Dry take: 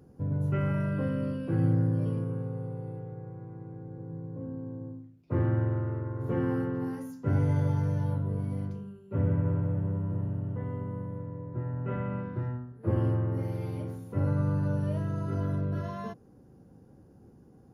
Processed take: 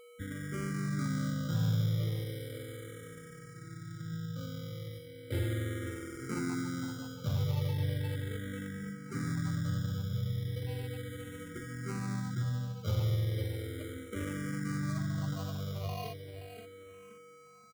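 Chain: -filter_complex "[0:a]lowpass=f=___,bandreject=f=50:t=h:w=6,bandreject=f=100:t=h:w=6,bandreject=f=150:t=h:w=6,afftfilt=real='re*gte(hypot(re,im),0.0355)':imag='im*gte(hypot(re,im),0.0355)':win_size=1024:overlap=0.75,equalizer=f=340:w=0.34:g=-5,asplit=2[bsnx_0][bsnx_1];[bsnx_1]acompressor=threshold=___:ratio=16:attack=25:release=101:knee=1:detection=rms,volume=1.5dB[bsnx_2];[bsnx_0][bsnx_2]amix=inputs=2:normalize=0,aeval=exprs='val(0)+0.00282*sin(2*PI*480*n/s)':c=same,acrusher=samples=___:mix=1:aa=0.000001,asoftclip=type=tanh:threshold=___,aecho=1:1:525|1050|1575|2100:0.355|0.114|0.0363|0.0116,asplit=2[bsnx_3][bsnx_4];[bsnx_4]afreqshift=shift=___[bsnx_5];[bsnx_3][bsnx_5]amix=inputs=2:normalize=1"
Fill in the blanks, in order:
1.7k, -43dB, 25, -21dB, -0.36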